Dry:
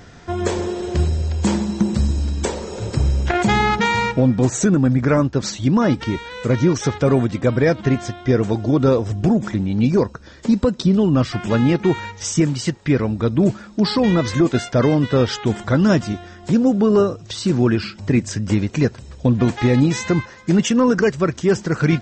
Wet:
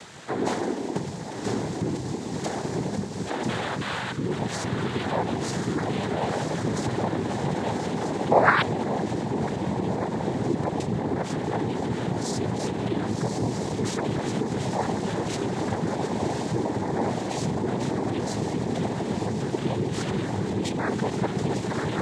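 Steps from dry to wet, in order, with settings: echo that smears into a reverb 1072 ms, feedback 66%, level -3 dB; peak limiter -11.5 dBFS, peak gain reduction 10 dB; gain riding within 5 dB; painted sound rise, 8.30–8.62 s, 440–1900 Hz -14 dBFS; small resonant body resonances 580/1000 Hz, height 8 dB; spectral selection erased 3.78–4.26 s, 350–850 Hz; noise-vocoded speech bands 6; tape noise reduction on one side only encoder only; trim -7.5 dB

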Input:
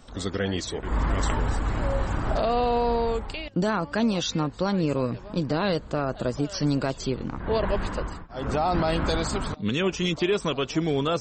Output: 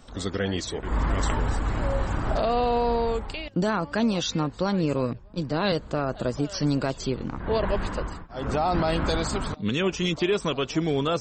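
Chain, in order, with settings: 5.13–5.72 s: three bands expanded up and down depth 100%

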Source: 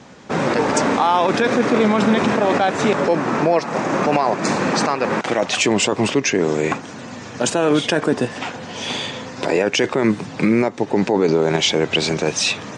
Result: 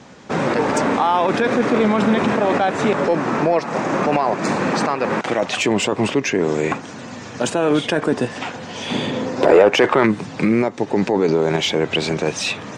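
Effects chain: 8.91–10.05 s: peaking EQ 190 Hz -> 1.4 kHz +12 dB 2.3 oct; saturation -3.5 dBFS, distortion -17 dB; dynamic bell 5.8 kHz, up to -6 dB, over -35 dBFS, Q 0.92

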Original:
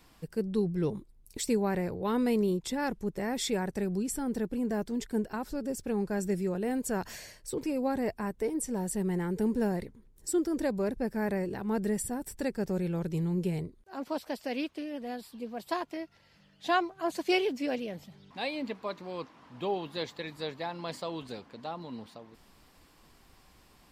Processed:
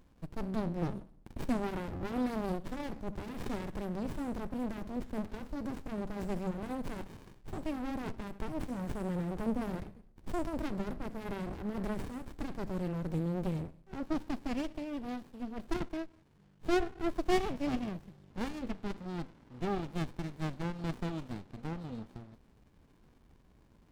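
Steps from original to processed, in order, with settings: Schroeder reverb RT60 0.6 s, combs from 28 ms, DRR 15 dB; sliding maximum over 65 samples

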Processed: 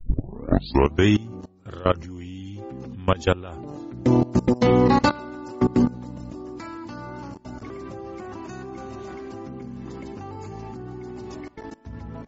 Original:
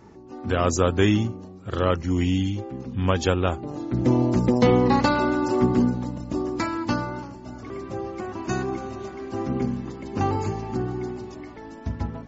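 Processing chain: tape start-up on the opening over 1.06 s; level held to a coarse grid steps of 20 dB; trim +4 dB

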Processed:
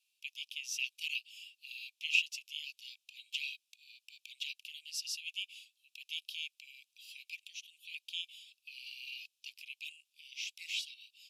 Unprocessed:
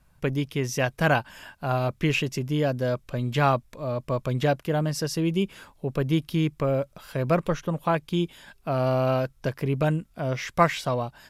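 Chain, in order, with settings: steep high-pass 2.5 kHz 96 dB/octave; tilt EQ -4.5 dB/octave; trim +6.5 dB

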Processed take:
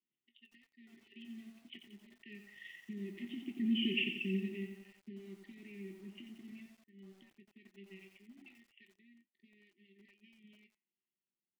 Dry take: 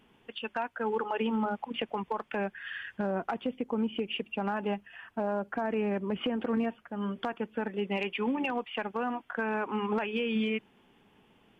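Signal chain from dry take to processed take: Doppler pass-by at 3.84 s, 12 m/s, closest 2.2 m; dynamic bell 870 Hz, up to -7 dB, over -60 dBFS, Q 2.4; waveshaping leveller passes 2; flange 0.41 Hz, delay 6 ms, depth 9.5 ms, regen +73%; rotary cabinet horn 5.5 Hz, later 0.9 Hz, at 4.47 s; brick-wall FIR band-stop 400–1800 Hz; cabinet simulation 260–3000 Hz, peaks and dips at 280 Hz -10 dB, 410 Hz -3 dB, 640 Hz +5 dB, 940 Hz -3 dB, 1.4 kHz +7 dB, 2.3 kHz -6 dB; doubling 21 ms -11 dB; bit-crushed delay 89 ms, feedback 55%, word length 12-bit, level -7.5 dB; trim +10 dB

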